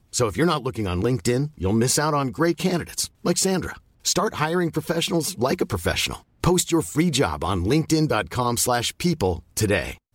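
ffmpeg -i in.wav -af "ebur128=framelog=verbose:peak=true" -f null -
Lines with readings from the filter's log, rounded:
Integrated loudness:
  I:         -22.7 LUFS
  Threshold: -32.7 LUFS
Loudness range:
  LRA:         1.5 LU
  Threshold: -42.7 LUFS
  LRA low:   -23.5 LUFS
  LRA high:  -22.0 LUFS
True peak:
  Peak:       -7.8 dBFS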